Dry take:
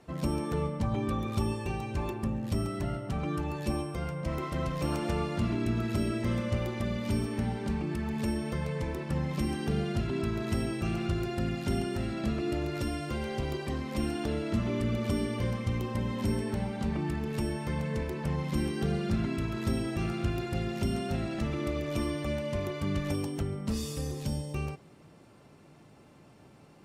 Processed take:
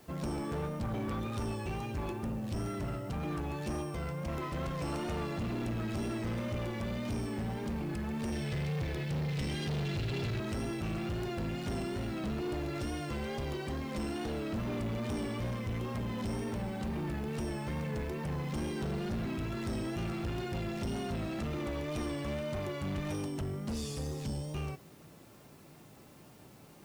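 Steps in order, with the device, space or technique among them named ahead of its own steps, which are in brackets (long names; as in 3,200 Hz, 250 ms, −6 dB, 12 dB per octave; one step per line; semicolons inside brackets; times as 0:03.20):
0:08.32–0:10.40: graphic EQ with 10 bands 125 Hz +11 dB, 250 Hz −5 dB, 500 Hz +3 dB, 1,000 Hz −8 dB, 2,000 Hz +6 dB, 4,000 Hz +9 dB
compact cassette (soft clipping −31.5 dBFS, distortion −9 dB; low-pass filter 11,000 Hz; tape wow and flutter; white noise bed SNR 29 dB)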